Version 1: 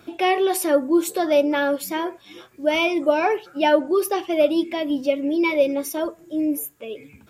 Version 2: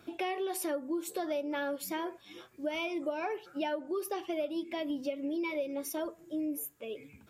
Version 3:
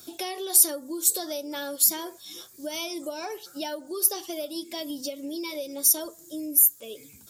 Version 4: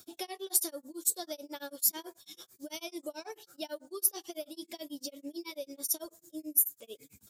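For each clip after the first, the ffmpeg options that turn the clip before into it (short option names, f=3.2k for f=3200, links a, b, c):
-af "acompressor=threshold=-24dB:ratio=6,volume=-7.5dB"
-af "aexciter=amount=4.9:drive=9.5:freq=3.8k"
-af "tremolo=f=9.1:d=0.99,volume=-4.5dB"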